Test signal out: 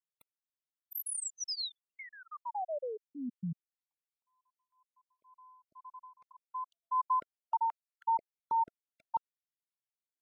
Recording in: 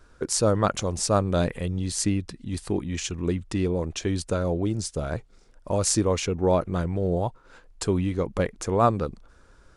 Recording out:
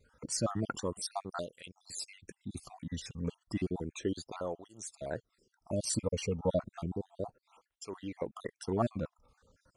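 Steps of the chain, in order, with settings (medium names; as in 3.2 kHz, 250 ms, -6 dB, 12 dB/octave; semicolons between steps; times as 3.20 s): random holes in the spectrogram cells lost 55%; cancelling through-zero flanger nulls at 0.32 Hz, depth 3.1 ms; trim -4.5 dB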